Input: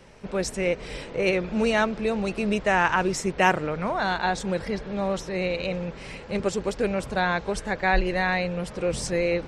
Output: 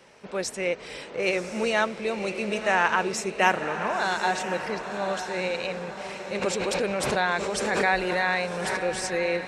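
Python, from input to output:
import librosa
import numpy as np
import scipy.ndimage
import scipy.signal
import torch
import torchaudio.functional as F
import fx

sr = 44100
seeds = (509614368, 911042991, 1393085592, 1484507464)

y = fx.highpass(x, sr, hz=430.0, slope=6)
y = fx.echo_diffused(y, sr, ms=1019, feedback_pct=40, wet_db=-8.5)
y = fx.pre_swell(y, sr, db_per_s=23.0, at=(6.41, 8.76), fade=0.02)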